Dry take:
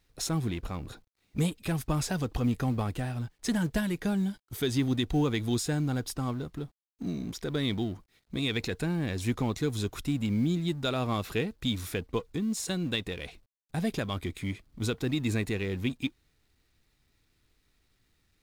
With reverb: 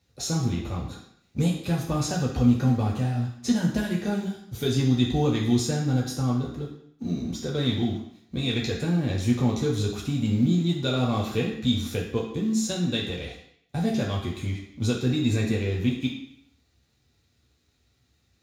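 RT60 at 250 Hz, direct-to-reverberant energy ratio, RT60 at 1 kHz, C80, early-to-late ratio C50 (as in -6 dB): 0.65 s, -3.0 dB, 0.70 s, 8.5 dB, 5.0 dB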